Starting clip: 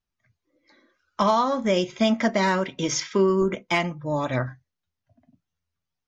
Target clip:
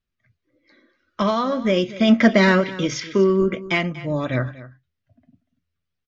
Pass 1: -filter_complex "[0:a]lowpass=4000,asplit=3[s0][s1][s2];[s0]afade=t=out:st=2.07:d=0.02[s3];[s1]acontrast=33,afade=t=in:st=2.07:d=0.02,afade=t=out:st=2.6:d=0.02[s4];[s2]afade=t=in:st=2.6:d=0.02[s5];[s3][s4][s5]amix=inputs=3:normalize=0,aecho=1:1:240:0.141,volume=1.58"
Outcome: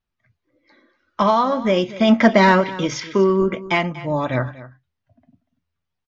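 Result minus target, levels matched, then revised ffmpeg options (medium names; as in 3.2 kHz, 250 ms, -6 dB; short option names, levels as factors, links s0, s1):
1 kHz band +5.5 dB
-filter_complex "[0:a]lowpass=4000,equalizer=f=880:w=2.4:g=-11.5,asplit=3[s0][s1][s2];[s0]afade=t=out:st=2.07:d=0.02[s3];[s1]acontrast=33,afade=t=in:st=2.07:d=0.02,afade=t=out:st=2.6:d=0.02[s4];[s2]afade=t=in:st=2.6:d=0.02[s5];[s3][s4][s5]amix=inputs=3:normalize=0,aecho=1:1:240:0.141,volume=1.58"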